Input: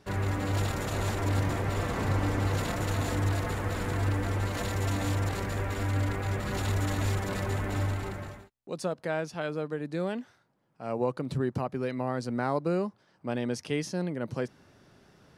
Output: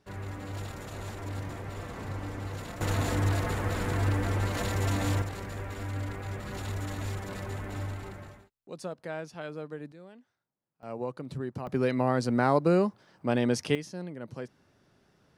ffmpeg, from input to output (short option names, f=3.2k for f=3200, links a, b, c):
-af "asetnsamples=n=441:p=0,asendcmd='2.81 volume volume 1dB;5.22 volume volume -6dB;9.92 volume volume -18.5dB;10.83 volume volume -6dB;11.67 volume volume 5dB;13.75 volume volume -7dB',volume=-9dB"